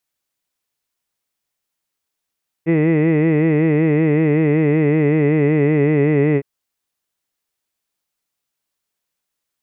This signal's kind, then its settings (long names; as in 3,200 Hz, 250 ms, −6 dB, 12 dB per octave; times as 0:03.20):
vowel by formant synthesis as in hid, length 3.76 s, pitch 159 Hz, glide −1.5 semitones